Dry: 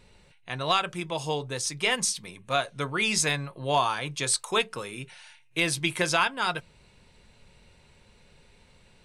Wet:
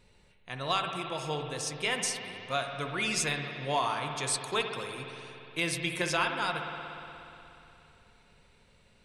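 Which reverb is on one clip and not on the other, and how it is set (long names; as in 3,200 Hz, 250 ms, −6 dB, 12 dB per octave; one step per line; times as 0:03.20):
spring reverb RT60 3.1 s, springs 59 ms, chirp 35 ms, DRR 4 dB
level −5.5 dB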